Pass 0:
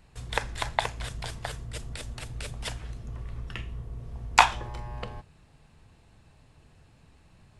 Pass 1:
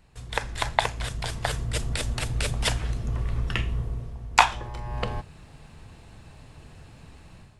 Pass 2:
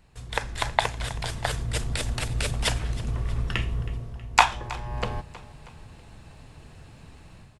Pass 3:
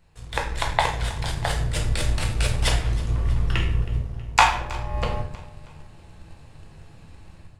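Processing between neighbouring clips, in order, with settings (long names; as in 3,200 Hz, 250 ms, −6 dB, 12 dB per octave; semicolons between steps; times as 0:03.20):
automatic gain control gain up to 11 dB; level −1 dB
repeating echo 320 ms, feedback 51%, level −18.5 dB
rectangular room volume 99 cubic metres, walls mixed, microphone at 0.76 metres; in parallel at −4.5 dB: dead-zone distortion −33.5 dBFS; on the sum: level −4 dB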